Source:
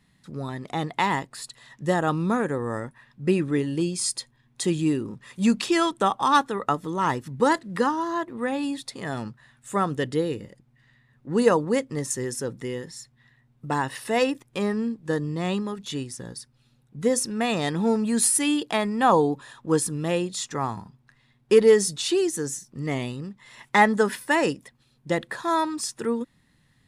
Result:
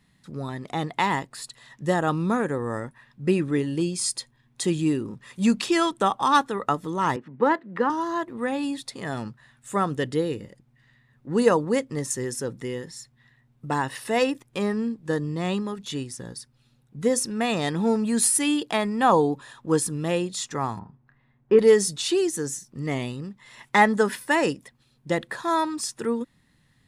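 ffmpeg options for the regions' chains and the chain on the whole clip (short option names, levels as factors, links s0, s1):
-filter_complex "[0:a]asettb=1/sr,asplit=3[s0][s1][s2];[s0]atrim=end=7.164[s3];[s1]atrim=start=7.16:end=7.9,asetpts=PTS-STARTPTS,afade=t=in:d=0.004:c=qsin,afade=t=out:st=0.736:d=0.004:c=qsin,adynamicsmooth=sensitivity=8:basefreq=4600,acrossover=split=180 2900:gain=0.0794 1 0.1[s4][s5][s6];[s4][s5][s6]amix=inputs=3:normalize=0[s7];[s2]atrim=start=7.896[s8];[s3][s7]acrossfade=d=0.004:c1=hsin:c2=qsin[s9];[s9][s8]acrossfade=d=0.004:c1=qsin:c2=hsin,asettb=1/sr,asplit=3[s10][s11][s12];[s10]atrim=end=20.794[s13];[s11]atrim=start=20.79:end=21.59,asetpts=PTS-STARTPTS,afade=t=in:d=0.004:c=qsin,afade=t=out:st=0.796:d=0.004:c=qsin,lowpass=1600,asplit=2[s14][s15];[s15]adelay=28,volume=0.355[s16];[s14][s16]amix=inputs=2:normalize=0,atrim=end_sample=35280[s17];[s12]atrim=start=21.586[s18];[s13][s17]acrossfade=d=0.004:c1=hsin:c2=qsin[s19];[s19][s18]acrossfade=d=0.004:c1=qsin:c2=hsin"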